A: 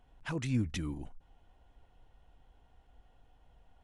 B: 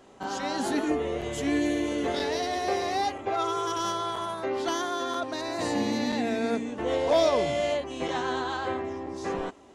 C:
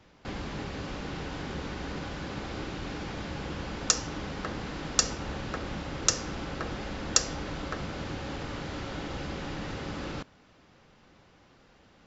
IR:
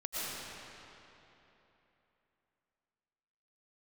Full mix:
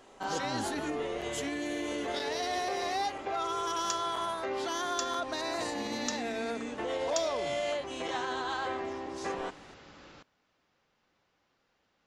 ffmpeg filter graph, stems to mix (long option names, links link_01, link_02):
-filter_complex "[0:a]lowpass=frequency=550:width_type=q:width=4.9,volume=-3.5dB[link_01];[1:a]alimiter=limit=-23dB:level=0:latency=1:release=85,volume=0.5dB[link_02];[2:a]volume=-12.5dB[link_03];[link_01][link_02][link_03]amix=inputs=3:normalize=0,lowshelf=frequency=320:gain=-10.5"